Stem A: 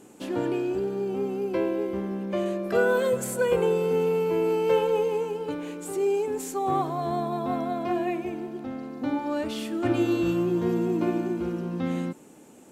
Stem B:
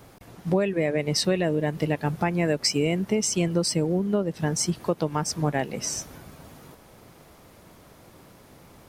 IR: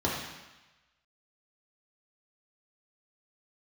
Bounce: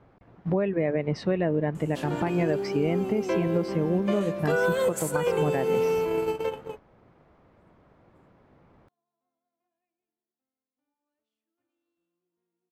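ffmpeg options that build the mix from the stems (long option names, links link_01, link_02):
-filter_complex "[0:a]lowshelf=frequency=250:gain=-12,bandreject=frequency=116.8:width_type=h:width=4,bandreject=frequency=233.6:width_type=h:width=4,bandreject=frequency=350.4:width_type=h:width=4,bandreject=frequency=467.2:width_type=h:width=4,bandreject=frequency=584:width_type=h:width=4,bandreject=frequency=700.8:width_type=h:width=4,bandreject=frequency=817.6:width_type=h:width=4,adelay=1750,volume=3dB[link_01];[1:a]lowpass=1800,volume=0dB,asplit=2[link_02][link_03];[link_03]apad=whole_len=637783[link_04];[link_01][link_04]sidechaingate=range=-50dB:threshold=-44dB:ratio=16:detection=peak[link_05];[link_05][link_02]amix=inputs=2:normalize=0,agate=range=-7dB:threshold=-41dB:ratio=16:detection=peak,alimiter=limit=-14.5dB:level=0:latency=1:release=162"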